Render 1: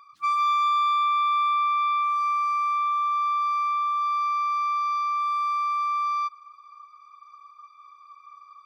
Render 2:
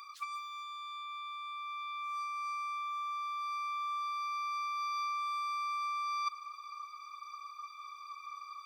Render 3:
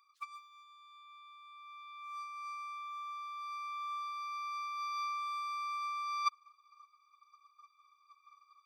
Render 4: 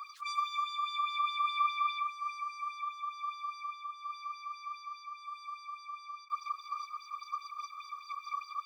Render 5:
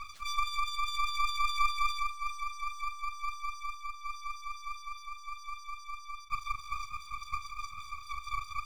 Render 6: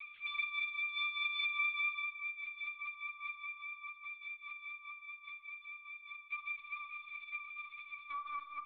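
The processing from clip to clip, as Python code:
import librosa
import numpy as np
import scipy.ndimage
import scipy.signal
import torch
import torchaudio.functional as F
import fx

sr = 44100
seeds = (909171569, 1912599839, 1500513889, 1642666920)

y1 = scipy.signal.sosfilt(scipy.signal.butter(2, 1200.0, 'highpass', fs=sr, output='sos'), x)
y1 = fx.high_shelf(y1, sr, hz=2300.0, db=11.5)
y1 = fx.over_compress(y1, sr, threshold_db=-30.0, ratio=-0.5)
y1 = F.gain(torch.from_numpy(y1), -5.5).numpy()
y2 = fx.upward_expand(y1, sr, threshold_db=-48.0, expansion=2.5)
y2 = F.gain(torch.from_numpy(y2), 4.5).numpy()
y3 = fx.over_compress(y2, sr, threshold_db=-53.0, ratio=-1.0)
y3 = fx.bell_lfo(y3, sr, hz=4.9, low_hz=990.0, high_hz=5400.0, db=14)
y3 = F.gain(torch.from_numpy(y3), 6.5).numpy()
y4 = np.maximum(y3, 0.0)
y4 = fx.doubler(y4, sr, ms=41.0, db=-12)
y4 = F.gain(torch.from_numpy(y4), 5.5).numpy()
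y5 = fx.filter_sweep_highpass(y4, sr, from_hz=2300.0, to_hz=130.0, start_s=8.04, end_s=8.55, q=2.6)
y5 = fx.lpc_vocoder(y5, sr, seeds[0], excitation='pitch_kept', order=8)
y5 = fx.rev_spring(y5, sr, rt60_s=1.4, pass_ms=(38, 58), chirp_ms=35, drr_db=10.5)
y5 = F.gain(torch.from_numpy(y5), -6.0).numpy()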